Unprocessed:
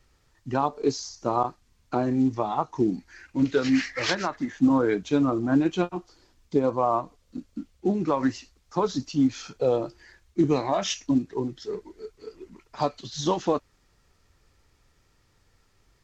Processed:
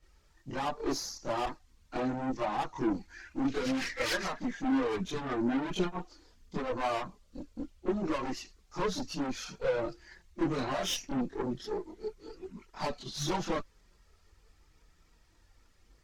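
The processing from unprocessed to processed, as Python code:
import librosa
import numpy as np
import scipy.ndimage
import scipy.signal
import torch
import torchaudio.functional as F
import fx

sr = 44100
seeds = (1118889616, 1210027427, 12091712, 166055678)

y = fx.tube_stage(x, sr, drive_db=29.0, bias=0.55)
y = fx.chorus_voices(y, sr, voices=6, hz=0.36, base_ms=25, depth_ms=3.4, mix_pct=70)
y = F.gain(torch.from_numpy(y), 3.0).numpy()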